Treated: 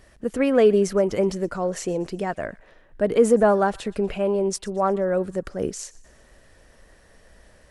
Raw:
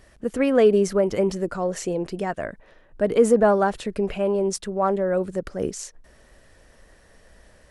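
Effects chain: thin delay 0.121 s, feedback 49%, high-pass 1400 Hz, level -21 dB

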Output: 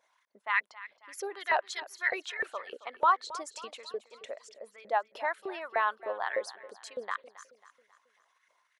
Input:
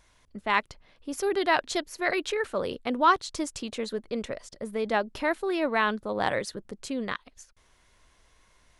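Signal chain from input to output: formant sharpening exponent 1.5; LFO high-pass saw up 3.3 Hz 500–2000 Hz; feedback echo 0.271 s, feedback 47%, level -17 dB; gain -6.5 dB

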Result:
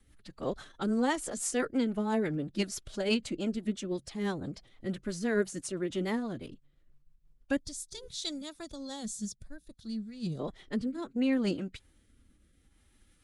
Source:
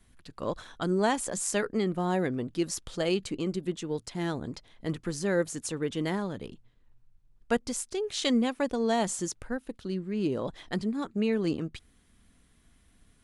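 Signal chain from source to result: formant-preserving pitch shift +3 st; spectral gain 7.6–10.4, 230–3300 Hz -13 dB; rotary speaker horn 6 Hz, later 0.65 Hz, at 7.39

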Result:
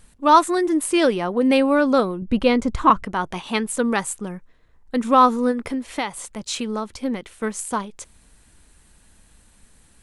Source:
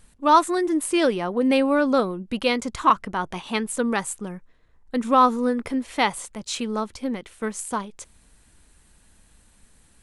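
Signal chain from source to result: 2.22–3.03 tilt -2.5 dB/oct; 5.51–6.97 compressor 10:1, threshold -24 dBFS, peak gain reduction 9.5 dB; gain +2.5 dB

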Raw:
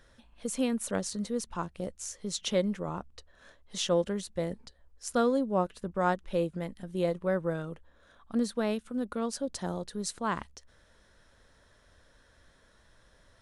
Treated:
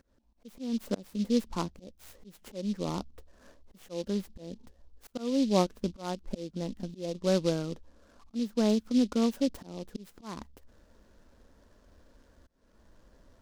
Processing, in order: tilt shelf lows +6 dB, about 780 Hz; auto swell 0.372 s; ten-band EQ 125 Hz -7 dB, 250 Hz +6 dB, 1000 Hz +3 dB, 4000 Hz -11 dB; noise-modulated delay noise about 4000 Hz, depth 0.06 ms; gain -1 dB

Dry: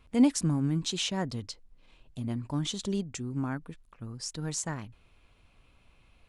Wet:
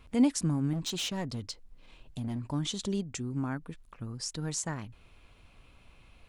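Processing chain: in parallel at +2.5 dB: compressor, threshold -43 dBFS, peak gain reduction 23.5 dB; 0.73–2.51 on the sum: hard clip -26.5 dBFS, distortion -19 dB; gain -3 dB

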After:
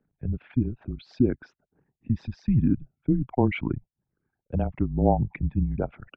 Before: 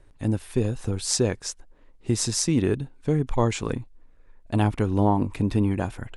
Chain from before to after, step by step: formant sharpening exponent 2; mistuned SSB -130 Hz 210–2900 Hz; gain +2.5 dB

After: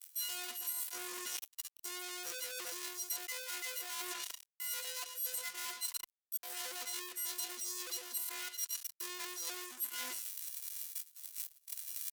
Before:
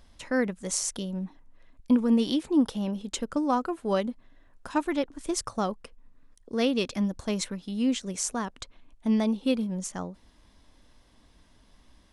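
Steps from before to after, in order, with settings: frequency quantiser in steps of 6 st; treble ducked by the level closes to 740 Hz, closed at -19.5 dBFS; on a send: feedback echo 0.121 s, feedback 31%, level -19 dB; on the sum: fuzz box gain 49 dB, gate -49 dBFS; low shelf 68 Hz -3 dB; pitch shift +8.5 st; gate -39 dBFS, range -27 dB; differentiator; reverse; compressor 10:1, threshold -49 dBFS, peak gain reduction 35 dB; reverse; gain +11 dB

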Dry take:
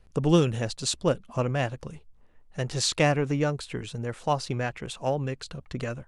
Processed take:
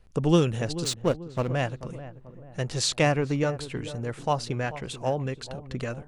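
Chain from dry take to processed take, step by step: 0.84–1.5 backlash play -28 dBFS; on a send: darkening echo 0.437 s, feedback 47%, low-pass 1000 Hz, level -13 dB

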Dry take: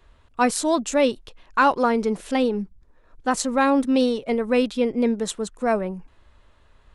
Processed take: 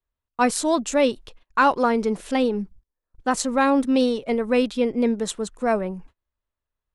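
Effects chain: gate -44 dBFS, range -31 dB

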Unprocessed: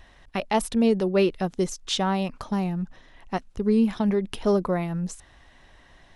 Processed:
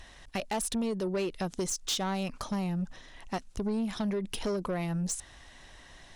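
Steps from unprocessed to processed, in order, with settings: bell 7900 Hz +10 dB 2 oct; compressor 6:1, threshold -25 dBFS, peak gain reduction 9 dB; soft clip -25.5 dBFS, distortion -14 dB

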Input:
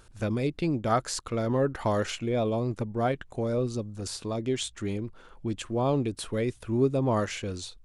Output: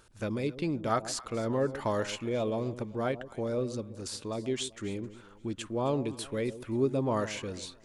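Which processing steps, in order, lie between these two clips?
low shelf 110 Hz -9 dB; notch 720 Hz, Q 14; on a send: echo with dull and thin repeats by turns 0.132 s, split 870 Hz, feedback 56%, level -13 dB; on the sum: gain -2.5 dB

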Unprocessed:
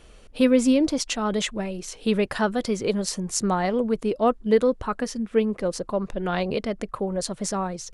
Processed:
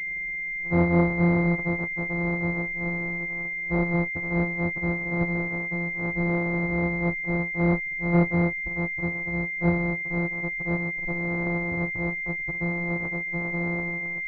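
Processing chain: sample sorter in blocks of 256 samples; time stretch by phase-locked vocoder 1.8×; in parallel at -9 dB: decimation with a swept rate 26×, swing 100% 1.7 Hz; on the sum: pulse-width modulation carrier 2100 Hz; gain -5 dB

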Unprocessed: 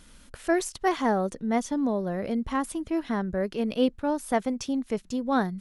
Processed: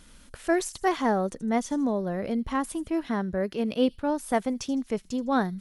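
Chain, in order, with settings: 3.06–3.91 HPF 41 Hz; thin delay 79 ms, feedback 38%, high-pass 5400 Hz, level -13.5 dB

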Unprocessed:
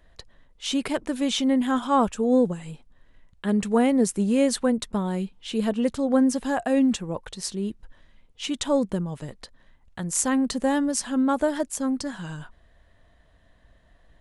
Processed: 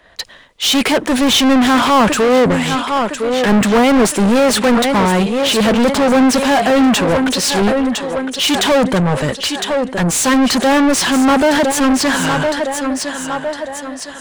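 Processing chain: hard clip -14.5 dBFS, distortion -22 dB; thinning echo 1.009 s, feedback 47%, high-pass 210 Hz, level -13.5 dB; overdrive pedal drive 36 dB, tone 3500 Hz, clips at -11 dBFS; three-band expander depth 70%; gain +5.5 dB

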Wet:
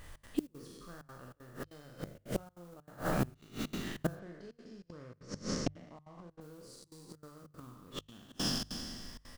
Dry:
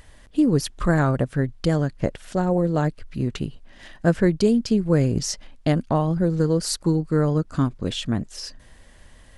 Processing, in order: spectral trails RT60 2.07 s; bell 1200 Hz +6.5 dB 0.34 oct; modulation noise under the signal 17 dB; 4.15–6.41 air absorption 120 m; doubler 40 ms -6.5 dB; flipped gate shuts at -11 dBFS, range -27 dB; step gate "xx.xxx.xxxxxx.x" 193 bpm -24 dB; notches 50/100/150 Hz; gain -7 dB

